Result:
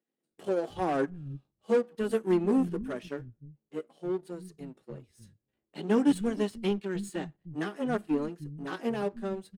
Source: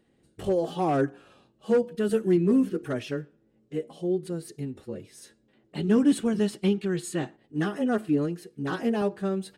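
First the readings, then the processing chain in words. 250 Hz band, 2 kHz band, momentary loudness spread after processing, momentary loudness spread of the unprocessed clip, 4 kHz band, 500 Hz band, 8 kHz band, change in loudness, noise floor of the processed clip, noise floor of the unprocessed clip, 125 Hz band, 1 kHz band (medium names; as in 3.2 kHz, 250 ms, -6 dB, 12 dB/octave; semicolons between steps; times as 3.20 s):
-4.5 dB, -3.0 dB, 18 LU, 14 LU, -4.0 dB, -3.5 dB, -7.5 dB, -4.0 dB, under -85 dBFS, -67 dBFS, -7.0 dB, -2.5 dB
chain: power-law waveshaper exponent 1.4; bands offset in time highs, lows 310 ms, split 170 Hz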